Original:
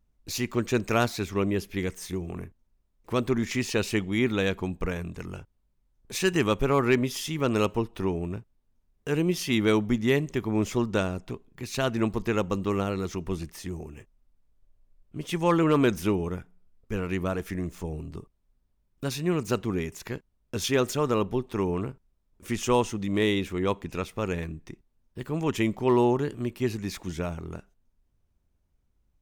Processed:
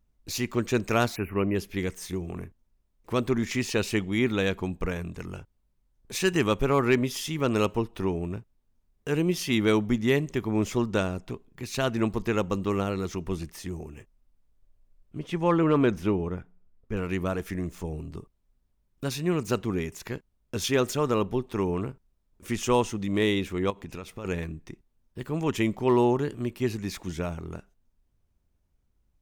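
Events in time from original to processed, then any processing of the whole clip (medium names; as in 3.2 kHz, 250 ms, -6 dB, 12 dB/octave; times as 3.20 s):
1.15–1.55 s: spectral selection erased 3–9.8 kHz
15.19–16.97 s: low-pass 2.1 kHz 6 dB/octave
23.70–24.25 s: compression, threshold -33 dBFS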